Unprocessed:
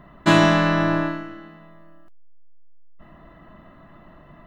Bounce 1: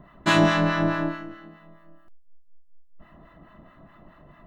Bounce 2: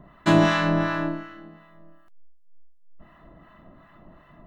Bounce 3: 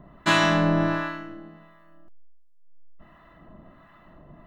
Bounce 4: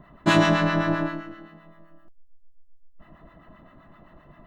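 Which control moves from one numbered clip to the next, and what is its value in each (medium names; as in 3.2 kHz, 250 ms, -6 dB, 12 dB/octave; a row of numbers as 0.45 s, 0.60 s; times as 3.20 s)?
harmonic tremolo, rate: 4.7 Hz, 2.7 Hz, 1.4 Hz, 7.7 Hz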